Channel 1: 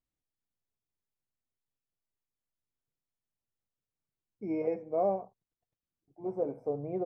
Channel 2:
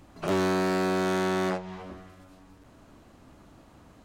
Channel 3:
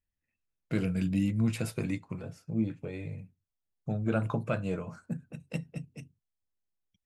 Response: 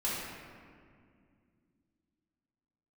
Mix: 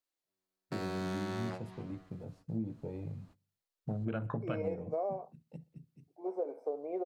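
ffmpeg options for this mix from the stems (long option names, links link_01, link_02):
-filter_complex "[0:a]highpass=frequency=350:width=0.5412,highpass=frequency=350:width=1.3066,volume=1dB[link_01];[1:a]volume=-12dB[link_02];[2:a]afwtdn=0.0126,volume=-2.5dB,afade=type=in:start_time=1.89:duration=0.52:silence=0.398107,afade=type=out:start_time=4.96:duration=0.34:silence=0.298538,asplit=3[link_03][link_04][link_05];[link_04]volume=-22.5dB[link_06];[link_05]apad=whole_len=182898[link_07];[link_02][link_07]sidechaingate=range=-58dB:threshold=-57dB:ratio=16:detection=peak[link_08];[link_06]aecho=0:1:62|124|186|248|310|372:1|0.46|0.212|0.0973|0.0448|0.0206[link_09];[link_01][link_08][link_03][link_09]amix=inputs=4:normalize=0,equalizer=frequency=4300:width_type=o:width=0.42:gain=4.5,acompressor=threshold=-31dB:ratio=10"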